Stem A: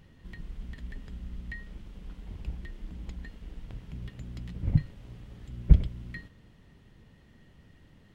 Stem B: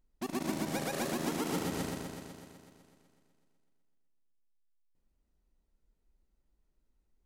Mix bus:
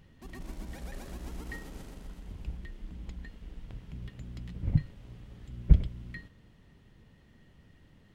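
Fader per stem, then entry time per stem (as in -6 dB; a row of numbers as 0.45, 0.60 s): -2.0, -14.0 dB; 0.00, 0.00 s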